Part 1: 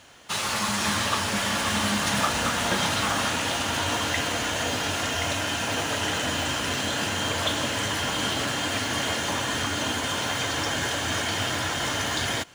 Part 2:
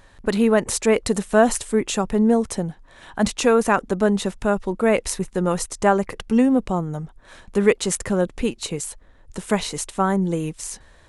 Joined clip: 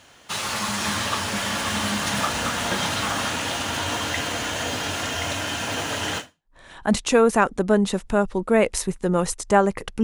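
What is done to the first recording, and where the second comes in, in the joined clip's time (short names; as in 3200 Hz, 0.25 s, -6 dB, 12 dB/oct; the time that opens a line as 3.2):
part 1
6.37 switch to part 2 from 2.69 s, crossfade 0.38 s exponential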